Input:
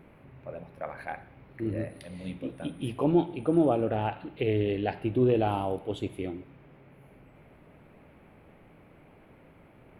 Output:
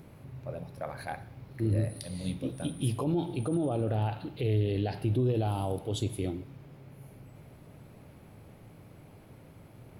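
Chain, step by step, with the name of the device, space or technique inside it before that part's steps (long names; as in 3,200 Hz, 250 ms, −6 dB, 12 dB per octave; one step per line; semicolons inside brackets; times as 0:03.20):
over-bright horn tweeter (high shelf with overshoot 3,500 Hz +12 dB, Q 1.5; brickwall limiter −23 dBFS, peak gain reduction 10 dB)
parametric band 110 Hz +10 dB 1 octave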